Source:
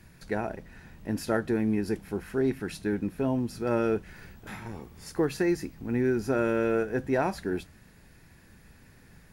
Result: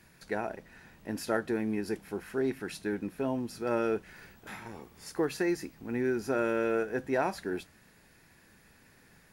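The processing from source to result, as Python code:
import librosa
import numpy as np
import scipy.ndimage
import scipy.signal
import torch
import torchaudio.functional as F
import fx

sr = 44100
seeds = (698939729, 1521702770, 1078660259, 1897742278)

y = fx.low_shelf(x, sr, hz=180.0, db=-12.0)
y = F.gain(torch.from_numpy(y), -1.0).numpy()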